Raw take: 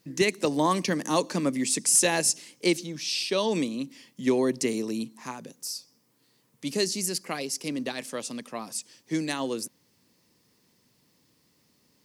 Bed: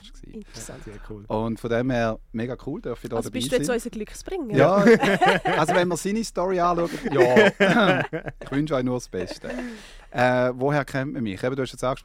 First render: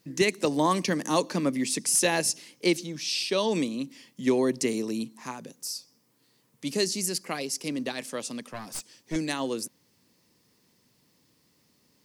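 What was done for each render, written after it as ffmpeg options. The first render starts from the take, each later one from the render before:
-filter_complex "[0:a]asettb=1/sr,asplit=3[s0][s1][s2];[s0]atrim=end=1.244[s3];[s1]atrim=start=1.24:end=2.76,asetpts=PTS-STARTPTS,afade=t=in:d=0.004:c=qsin,afade=t=out:st=1.516:d=0.004:c=qsin,equalizer=f=7800:w=2:g=-5.5[s4];[s2]atrim=start=2.756[s5];[s3][s4]acrossfade=d=0.004:c1=hsin:c2=qsin[s6];[s6][s5]acrossfade=d=0.004:c1=qsin:c2=hsin,asettb=1/sr,asplit=3[s7][s8][s9];[s7]atrim=end=8.504[s10];[s8]atrim=start=8.5:end=9.16,asetpts=PTS-STARTPTS,afade=t=in:d=0.004:c=qsin,afade=t=out:st=0.656:d=0.004:c=qsin,aeval=exprs='clip(val(0),-1,0.0126)':c=same[s11];[s9]atrim=start=9.156[s12];[s10][s11]acrossfade=d=0.004:c1=hsin:c2=qsin[s13];[s13][s12]acrossfade=d=0.004:c1=qsin:c2=hsin"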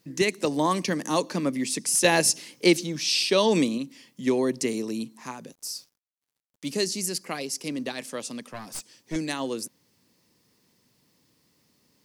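-filter_complex "[0:a]asettb=1/sr,asplit=3[s0][s1][s2];[s0]atrim=end=2.044[s3];[s1]atrim=start=2.04:end=3.78,asetpts=PTS-STARTPTS,afade=t=in:d=0.004:c=qsin,afade=t=out:st=1.736:d=0.004:c=qsin,acontrast=27[s4];[s2]atrim=start=3.776[s5];[s3][s4]acrossfade=d=0.004:c1=hsin:c2=qsin[s6];[s6][s5]acrossfade=d=0.004:c1=qsin:c2=hsin,asettb=1/sr,asplit=3[s7][s8][s9];[s7]atrim=end=5.524[s10];[s8]atrim=start=5.52:end=6.68,asetpts=PTS-STARTPTS,afade=t=in:d=0.004:c=qsin,afade=t=out:st=1.156:d=0.004:c=qsin,acrusher=bits=8:mix=0:aa=0.5[s11];[s9]atrim=start=6.676[s12];[s10][s11]acrossfade=d=0.004:c1=hsin:c2=qsin[s13];[s13][s12]acrossfade=d=0.004:c1=qsin:c2=hsin"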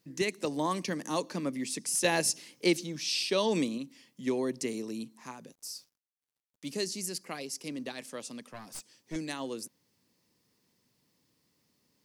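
-af "volume=0.447"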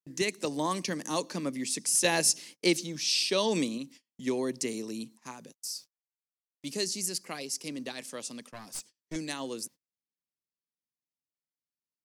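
-af "agate=range=0.0224:threshold=0.00282:ratio=16:detection=peak,equalizer=f=7300:t=o:w=2.1:g=5"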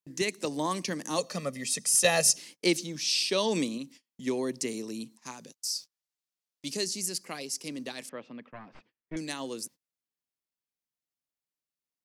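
-filter_complex "[0:a]asettb=1/sr,asplit=3[s0][s1][s2];[s0]atrim=end=1.184[s3];[s1]atrim=start=1.18:end=2.36,asetpts=PTS-STARTPTS,afade=t=in:d=0.004:c=qsin,afade=t=out:st=1.176:d=0.004:c=qsin,aecho=1:1:1.6:0.8,atrim=end_sample=52038[s4];[s2]atrim=start=2.356[s5];[s3][s4]acrossfade=d=0.004:c1=hsin:c2=qsin[s6];[s6][s5]acrossfade=d=0.004:c1=qsin:c2=hsin,asettb=1/sr,asplit=3[s7][s8][s9];[s7]atrim=end=5.164[s10];[s8]atrim=start=5.16:end=6.77,asetpts=PTS-STARTPTS,afade=t=in:d=0.004:c=qsin,afade=t=out:st=1.606:d=0.004:c=qsin,equalizer=f=5000:w=0.83:g=6[s11];[s9]atrim=start=6.766[s12];[s10][s11]acrossfade=d=0.004:c1=hsin:c2=qsin[s13];[s13][s12]acrossfade=d=0.004:c1=qsin:c2=hsin,asettb=1/sr,asplit=3[s14][s15][s16];[s14]atrim=end=8.094[s17];[s15]atrim=start=8.09:end=9.17,asetpts=PTS-STARTPTS,afade=t=in:d=0.004:c=qsin,afade=t=out:st=1.076:d=0.004:c=qsin,lowpass=f=2500:w=0.5412,lowpass=f=2500:w=1.3066[s18];[s16]atrim=start=9.166[s19];[s17][s18]acrossfade=d=0.004:c1=hsin:c2=qsin[s20];[s20][s19]acrossfade=d=0.004:c1=qsin:c2=hsin"

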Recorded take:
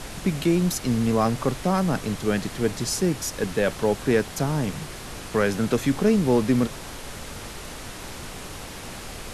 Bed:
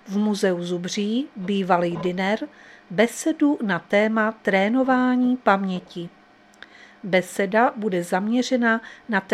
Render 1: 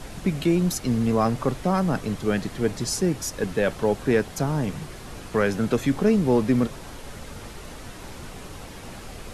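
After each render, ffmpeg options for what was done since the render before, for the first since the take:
-af "afftdn=nr=6:nf=-38"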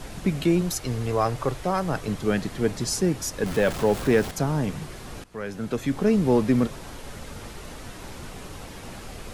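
-filter_complex "[0:a]asettb=1/sr,asplit=3[s0][s1][s2];[s0]atrim=end=0.614[s3];[s1]atrim=start=0.61:end=2.08,asetpts=PTS-STARTPTS,afade=t=in:d=0.004:c=qsin,afade=t=out:st=1.466:d=0.004:c=qsin,equalizer=f=220:w=2.8:g=-13[s4];[s2]atrim=start=2.076[s5];[s3][s4]acrossfade=d=0.004:c1=hsin:c2=qsin[s6];[s6][s5]acrossfade=d=0.004:c1=qsin:c2=hsin,asettb=1/sr,asplit=3[s7][s8][s9];[s7]atrim=end=3.464[s10];[s8]atrim=start=3.46:end=4.31,asetpts=PTS-STARTPTS,afade=t=in:d=0.004:c=qsin,afade=t=out:st=0.846:d=0.004:c=qsin,aeval=exprs='val(0)+0.5*0.0282*sgn(val(0))':c=same[s11];[s9]atrim=start=4.306[s12];[s10][s11]acrossfade=d=0.004:c1=hsin:c2=qsin[s13];[s13][s12]acrossfade=d=0.004:c1=qsin:c2=hsin,asplit=2[s14][s15];[s14]atrim=end=5.24,asetpts=PTS-STARTPTS,afade=t=out:st=5.236:d=0.004:c=hsin:silence=0.105925[s16];[s15]atrim=start=5.24,asetpts=PTS-STARTPTS,afade=t=in:d=0.99:silence=0.105925[s17];[s16][s17]concat=n=2:v=0:a=1"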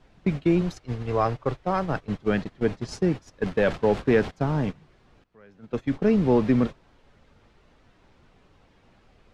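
-af "agate=range=0.112:threshold=0.0501:ratio=16:detection=peak,lowpass=3800"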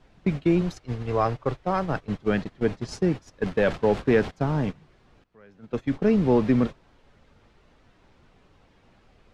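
-af anull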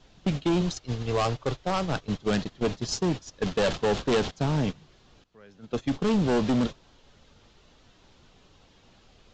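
-af "aresample=16000,asoftclip=type=hard:threshold=0.1,aresample=44100,aexciter=amount=3.4:drive=3.7:freq=3000"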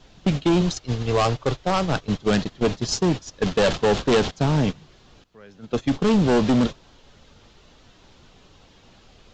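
-af "volume=1.88"

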